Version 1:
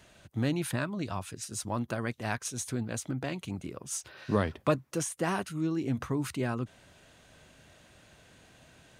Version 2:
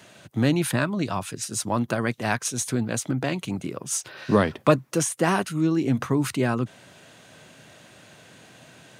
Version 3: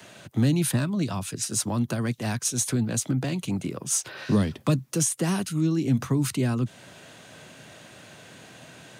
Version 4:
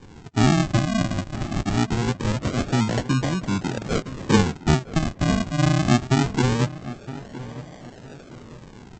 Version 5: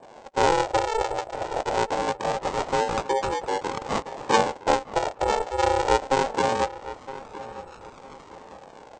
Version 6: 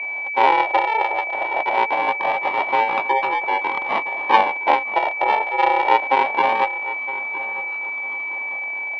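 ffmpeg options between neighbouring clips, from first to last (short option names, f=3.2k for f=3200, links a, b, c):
-af "highpass=f=110:w=0.5412,highpass=f=110:w=1.3066,volume=8.5dB"
-filter_complex "[0:a]acrossover=split=260|3000[a][b][c];[b]acompressor=threshold=-37dB:ratio=3[d];[a][d][c]amix=inputs=3:normalize=0,acrossover=split=170|1300|4800[e][f][g][h];[g]asoftclip=type=tanh:threshold=-35.5dB[i];[e][f][i][h]amix=inputs=4:normalize=0,volume=2.5dB"
-filter_complex "[0:a]aresample=16000,acrusher=samples=24:mix=1:aa=0.000001:lfo=1:lforange=24:lforate=0.23,aresample=44100,asplit=2[a][b];[b]adelay=963,lowpass=f=2.3k:p=1,volume=-15dB,asplit=2[c][d];[d]adelay=963,lowpass=f=2.3k:p=1,volume=0.34,asplit=2[e][f];[f]adelay=963,lowpass=f=2.3k:p=1,volume=0.34[g];[a][c][e][g]amix=inputs=4:normalize=0,volume=4dB"
-af "aeval=exprs='val(0)*sin(2*PI*670*n/s)':c=same"
-af "aeval=exprs='val(0)+0.0316*sin(2*PI*2300*n/s)':c=same,highpass=450,equalizer=f=470:t=q:w=4:g=-10,equalizer=f=950:t=q:w=4:g=4,equalizer=f=1.4k:t=q:w=4:g=-9,lowpass=f=3.1k:w=0.5412,lowpass=f=3.1k:w=1.3066,volume=6.5dB"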